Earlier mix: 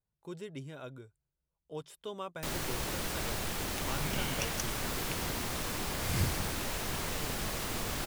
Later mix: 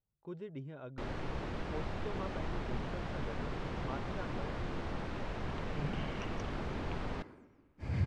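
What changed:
first sound: entry -1.45 s; second sound: entry +1.80 s; master: add tape spacing loss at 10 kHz 36 dB

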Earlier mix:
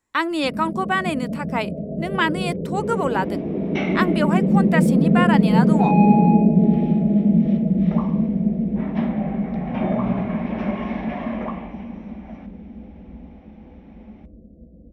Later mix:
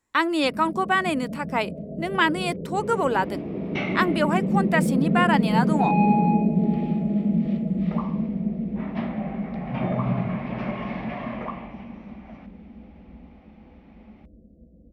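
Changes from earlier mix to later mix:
first sound -6.0 dB; second sound: send off

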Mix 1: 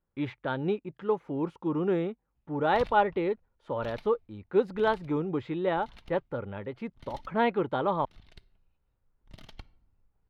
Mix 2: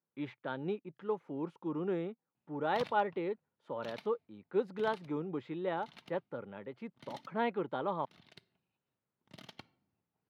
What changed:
speech -7.5 dB; master: add HPF 140 Hz 24 dB/oct

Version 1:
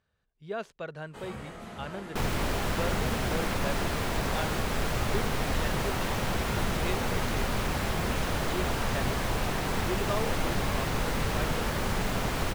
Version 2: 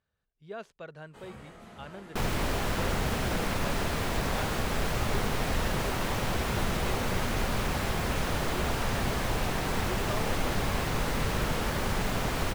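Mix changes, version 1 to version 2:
speech -5.5 dB; first sound -6.5 dB

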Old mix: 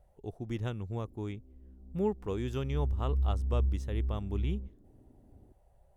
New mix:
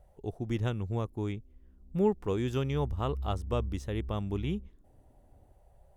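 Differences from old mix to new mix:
speech +4.0 dB; background -7.5 dB

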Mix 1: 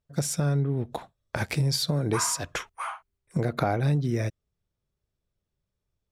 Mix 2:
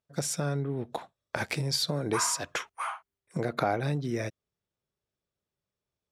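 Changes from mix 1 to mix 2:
speech: add high shelf 12000 Hz -7.5 dB; master: add HPF 290 Hz 6 dB/oct

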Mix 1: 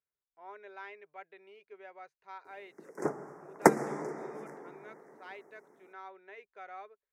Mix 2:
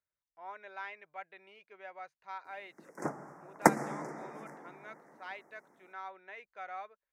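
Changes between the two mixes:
speech +4.0 dB; master: add bell 410 Hz -12 dB 0.35 oct

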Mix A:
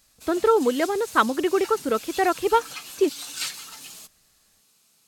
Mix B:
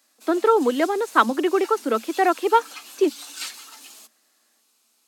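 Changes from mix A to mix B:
speech +3.5 dB; master: add rippled Chebyshev high-pass 220 Hz, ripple 3 dB

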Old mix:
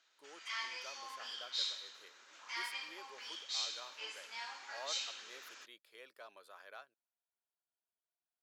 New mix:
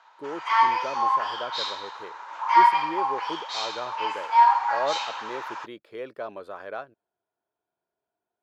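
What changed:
background: add resonant high-pass 920 Hz, resonance Q 8.2; master: remove differentiator

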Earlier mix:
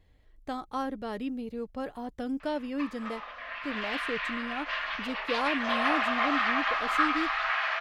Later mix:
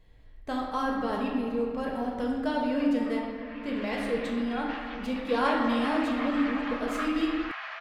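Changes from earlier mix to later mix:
background -9.0 dB; reverb: on, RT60 2.4 s

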